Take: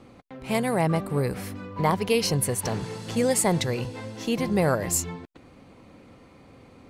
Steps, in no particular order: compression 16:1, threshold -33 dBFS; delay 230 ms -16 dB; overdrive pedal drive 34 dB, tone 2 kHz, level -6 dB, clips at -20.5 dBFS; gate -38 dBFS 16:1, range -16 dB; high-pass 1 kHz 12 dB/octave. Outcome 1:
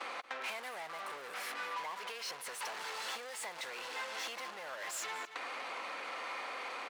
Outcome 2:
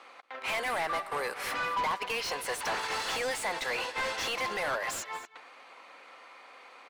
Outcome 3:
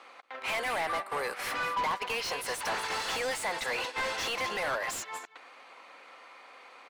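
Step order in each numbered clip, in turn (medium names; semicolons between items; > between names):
overdrive pedal > gate > delay > compression > high-pass; compression > gate > high-pass > overdrive pedal > delay; compression > delay > gate > high-pass > overdrive pedal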